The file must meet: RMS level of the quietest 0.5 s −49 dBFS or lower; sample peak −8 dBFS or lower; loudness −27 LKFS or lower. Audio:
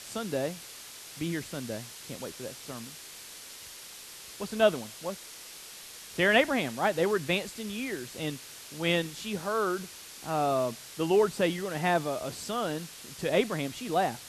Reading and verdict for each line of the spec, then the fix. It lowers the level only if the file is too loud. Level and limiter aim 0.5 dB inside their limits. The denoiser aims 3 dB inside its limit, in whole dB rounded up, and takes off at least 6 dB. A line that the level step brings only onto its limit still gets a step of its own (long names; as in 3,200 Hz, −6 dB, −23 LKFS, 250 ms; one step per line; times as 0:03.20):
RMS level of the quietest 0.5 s −46 dBFS: out of spec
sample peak −10.0 dBFS: in spec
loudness −30.0 LKFS: in spec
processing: broadband denoise 6 dB, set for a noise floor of −46 dBFS